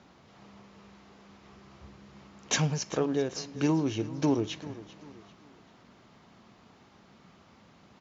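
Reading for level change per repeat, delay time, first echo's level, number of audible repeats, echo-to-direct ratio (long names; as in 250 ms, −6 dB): −8.0 dB, 392 ms, −17.0 dB, 3, −16.5 dB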